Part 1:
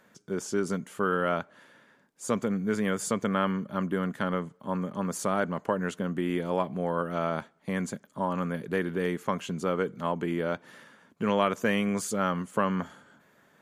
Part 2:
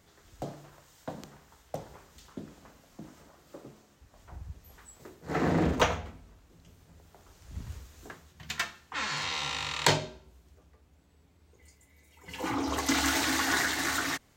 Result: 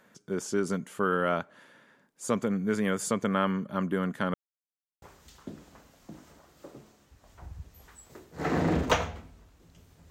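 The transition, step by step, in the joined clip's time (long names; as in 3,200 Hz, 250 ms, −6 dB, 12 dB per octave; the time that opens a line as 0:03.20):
part 1
0:04.34–0:05.02: silence
0:05.02: continue with part 2 from 0:01.92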